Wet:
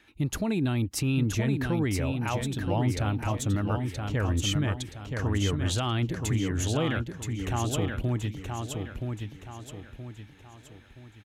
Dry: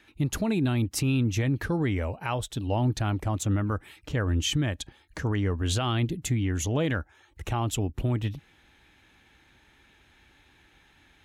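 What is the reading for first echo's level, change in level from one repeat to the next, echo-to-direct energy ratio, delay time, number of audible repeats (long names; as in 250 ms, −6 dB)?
−5.0 dB, −8.0 dB, −4.5 dB, 974 ms, 4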